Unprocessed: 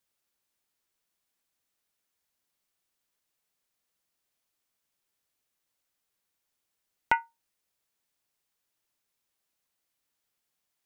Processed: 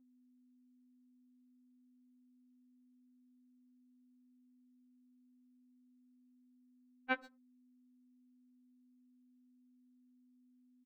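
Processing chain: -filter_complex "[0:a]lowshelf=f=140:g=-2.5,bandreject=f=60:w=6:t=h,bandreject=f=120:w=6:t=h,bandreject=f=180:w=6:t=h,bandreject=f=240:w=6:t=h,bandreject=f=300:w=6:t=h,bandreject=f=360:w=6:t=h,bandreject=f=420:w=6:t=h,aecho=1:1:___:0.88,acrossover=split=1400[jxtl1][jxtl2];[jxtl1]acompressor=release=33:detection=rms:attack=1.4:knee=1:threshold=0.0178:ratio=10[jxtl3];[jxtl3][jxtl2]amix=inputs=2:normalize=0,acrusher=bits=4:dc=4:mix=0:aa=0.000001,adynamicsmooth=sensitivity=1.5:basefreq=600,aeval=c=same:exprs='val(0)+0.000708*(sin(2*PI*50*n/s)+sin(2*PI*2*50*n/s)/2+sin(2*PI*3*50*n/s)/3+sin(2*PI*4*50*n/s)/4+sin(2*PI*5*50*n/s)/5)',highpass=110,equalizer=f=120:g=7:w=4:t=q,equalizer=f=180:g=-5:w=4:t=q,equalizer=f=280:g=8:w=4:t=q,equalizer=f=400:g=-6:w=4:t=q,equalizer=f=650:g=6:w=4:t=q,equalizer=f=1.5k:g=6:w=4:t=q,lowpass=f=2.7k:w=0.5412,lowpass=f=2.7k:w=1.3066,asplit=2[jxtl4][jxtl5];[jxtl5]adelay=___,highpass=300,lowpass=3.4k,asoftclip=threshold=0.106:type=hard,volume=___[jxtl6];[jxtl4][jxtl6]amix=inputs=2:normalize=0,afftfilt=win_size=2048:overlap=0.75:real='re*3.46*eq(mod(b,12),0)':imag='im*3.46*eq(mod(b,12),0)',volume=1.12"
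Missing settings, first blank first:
1.3, 130, 0.0891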